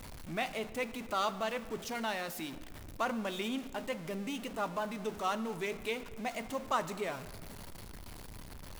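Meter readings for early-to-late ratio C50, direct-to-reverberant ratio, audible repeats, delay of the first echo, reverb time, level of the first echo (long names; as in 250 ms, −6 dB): 14.0 dB, 12.0 dB, no echo audible, no echo audible, 1.7 s, no echo audible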